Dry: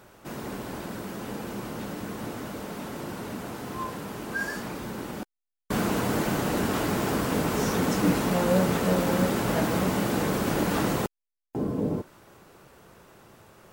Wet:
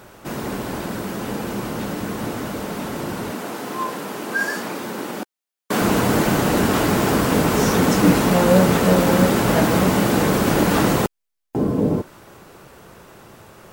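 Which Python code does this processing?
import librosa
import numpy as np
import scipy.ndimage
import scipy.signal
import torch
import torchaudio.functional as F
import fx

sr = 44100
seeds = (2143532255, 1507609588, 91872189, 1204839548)

y = fx.highpass(x, sr, hz=240.0, slope=12, at=(3.31, 5.82))
y = F.gain(torch.from_numpy(y), 8.5).numpy()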